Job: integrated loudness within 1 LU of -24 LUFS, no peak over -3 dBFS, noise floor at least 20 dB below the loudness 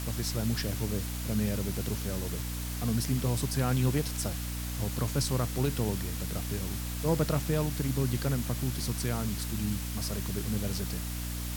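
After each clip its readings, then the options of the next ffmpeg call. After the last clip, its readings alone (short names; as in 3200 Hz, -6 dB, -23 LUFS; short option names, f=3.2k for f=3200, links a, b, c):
hum 60 Hz; harmonics up to 300 Hz; hum level -33 dBFS; noise floor -35 dBFS; noise floor target -52 dBFS; loudness -31.5 LUFS; peak -16.0 dBFS; loudness target -24.0 LUFS
-> -af "bandreject=f=60:t=h:w=6,bandreject=f=120:t=h:w=6,bandreject=f=180:t=h:w=6,bandreject=f=240:t=h:w=6,bandreject=f=300:t=h:w=6"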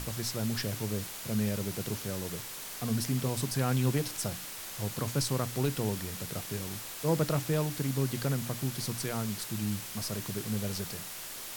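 hum none; noise floor -42 dBFS; noise floor target -53 dBFS
-> -af "afftdn=nr=11:nf=-42"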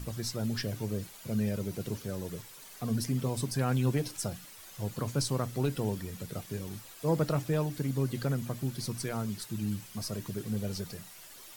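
noise floor -50 dBFS; noise floor target -54 dBFS
-> -af "afftdn=nr=6:nf=-50"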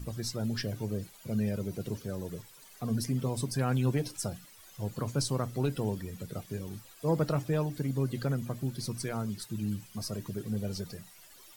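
noise floor -55 dBFS; loudness -34.0 LUFS; peak -17.0 dBFS; loudness target -24.0 LUFS
-> -af "volume=10dB"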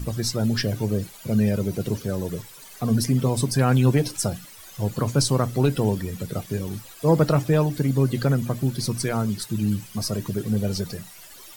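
loudness -24.0 LUFS; peak -7.0 dBFS; noise floor -45 dBFS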